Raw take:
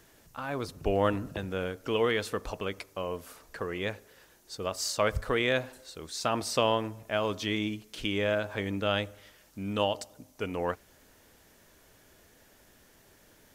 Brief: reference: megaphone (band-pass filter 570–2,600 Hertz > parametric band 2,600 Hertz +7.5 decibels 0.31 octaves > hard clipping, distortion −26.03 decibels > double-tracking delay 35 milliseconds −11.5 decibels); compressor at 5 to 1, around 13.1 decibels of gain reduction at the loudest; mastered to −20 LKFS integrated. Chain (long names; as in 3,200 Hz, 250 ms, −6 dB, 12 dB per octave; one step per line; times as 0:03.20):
downward compressor 5 to 1, threshold −36 dBFS
band-pass filter 570–2,600 Hz
parametric band 2,600 Hz +7.5 dB 0.31 octaves
hard clipping −28 dBFS
double-tracking delay 35 ms −11.5 dB
level +23.5 dB